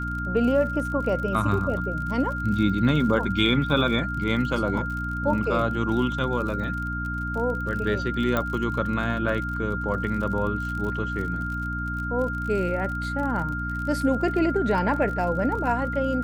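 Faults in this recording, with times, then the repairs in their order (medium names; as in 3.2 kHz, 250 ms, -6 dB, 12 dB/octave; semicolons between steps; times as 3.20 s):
crackle 46 per s -32 dBFS
hum 60 Hz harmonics 5 -31 dBFS
whine 1.4 kHz -30 dBFS
8.37 s: pop -11 dBFS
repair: de-click; de-hum 60 Hz, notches 5; band-stop 1.4 kHz, Q 30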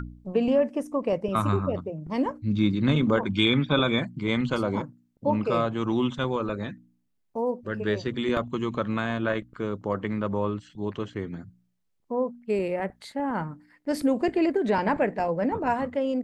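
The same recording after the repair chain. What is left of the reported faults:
8.37 s: pop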